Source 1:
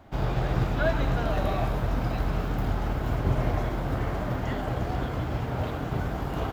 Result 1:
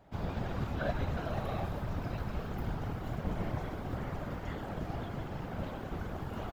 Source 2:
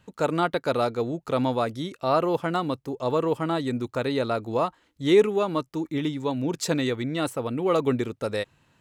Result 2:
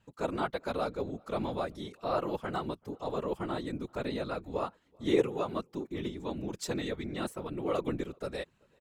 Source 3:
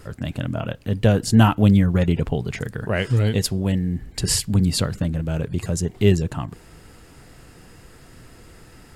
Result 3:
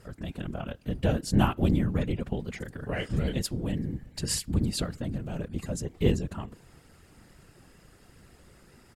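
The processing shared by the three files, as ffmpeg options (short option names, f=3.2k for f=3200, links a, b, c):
-filter_complex "[0:a]afftfilt=real='hypot(re,im)*cos(2*PI*random(0))':imag='hypot(re,im)*sin(2*PI*random(1))':win_size=512:overlap=0.75,asplit=2[a][b];[b]adelay=384.8,volume=-30dB,highshelf=f=4k:g=-8.66[c];[a][c]amix=inputs=2:normalize=0,aeval=exprs='0.562*(cos(1*acos(clip(val(0)/0.562,-1,1)))-cos(1*PI/2))+0.0562*(cos(3*acos(clip(val(0)/0.562,-1,1)))-cos(3*PI/2))':c=same"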